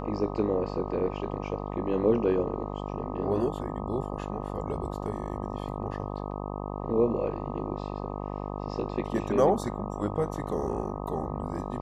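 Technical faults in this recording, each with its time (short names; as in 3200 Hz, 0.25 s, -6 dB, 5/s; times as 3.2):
buzz 50 Hz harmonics 25 -35 dBFS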